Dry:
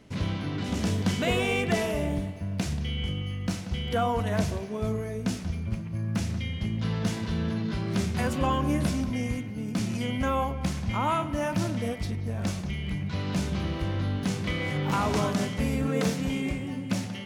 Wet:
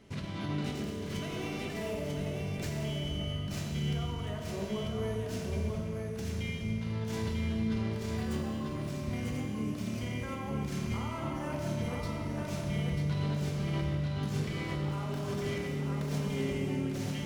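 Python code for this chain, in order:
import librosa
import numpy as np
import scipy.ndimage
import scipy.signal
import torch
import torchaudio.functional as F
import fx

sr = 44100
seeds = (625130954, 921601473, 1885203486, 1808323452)

p1 = fx.tracing_dist(x, sr, depth_ms=0.082)
p2 = fx.over_compress(p1, sr, threshold_db=-32.0, ratio=-1.0)
p3 = p2 + fx.echo_single(p2, sr, ms=943, db=-4.0, dry=0)
p4 = fx.rev_fdn(p3, sr, rt60_s=2.1, lf_ratio=0.9, hf_ratio=1.0, size_ms=15.0, drr_db=0.5)
y = p4 * 10.0 ** (-7.5 / 20.0)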